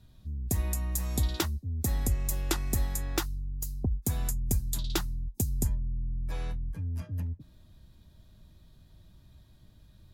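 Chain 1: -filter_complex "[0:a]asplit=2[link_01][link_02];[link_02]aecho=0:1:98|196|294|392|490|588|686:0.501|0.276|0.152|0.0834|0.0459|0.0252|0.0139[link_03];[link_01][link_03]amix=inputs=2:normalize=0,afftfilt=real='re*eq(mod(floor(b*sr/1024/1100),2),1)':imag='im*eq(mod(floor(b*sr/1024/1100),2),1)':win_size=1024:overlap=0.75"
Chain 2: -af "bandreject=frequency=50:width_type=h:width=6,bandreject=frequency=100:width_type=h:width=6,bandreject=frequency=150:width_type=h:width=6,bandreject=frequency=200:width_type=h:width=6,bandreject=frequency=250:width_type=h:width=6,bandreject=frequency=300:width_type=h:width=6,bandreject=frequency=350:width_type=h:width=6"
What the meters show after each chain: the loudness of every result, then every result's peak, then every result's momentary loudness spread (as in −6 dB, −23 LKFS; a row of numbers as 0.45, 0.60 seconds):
−39.5, −33.5 LKFS; −18.0, −13.5 dBFS; 16, 7 LU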